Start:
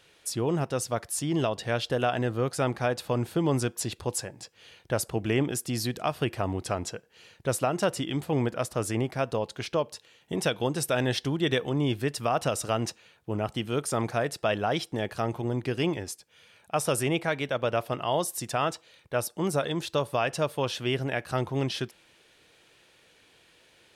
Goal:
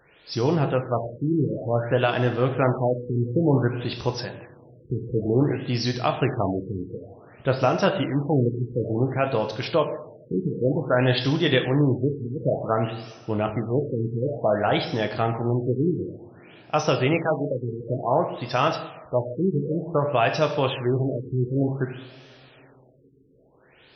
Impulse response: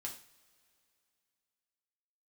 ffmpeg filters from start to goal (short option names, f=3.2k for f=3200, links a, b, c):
-filter_complex "[0:a]asplit=2[a][b];[1:a]atrim=start_sample=2205,asetrate=22050,aresample=44100[c];[b][c]afir=irnorm=-1:irlink=0,volume=-1dB[d];[a][d]amix=inputs=2:normalize=0,afftfilt=real='re*lt(b*sr/1024,450*pow(6300/450,0.5+0.5*sin(2*PI*0.55*pts/sr)))':imag='im*lt(b*sr/1024,450*pow(6300/450,0.5+0.5*sin(2*PI*0.55*pts/sr)))':win_size=1024:overlap=0.75"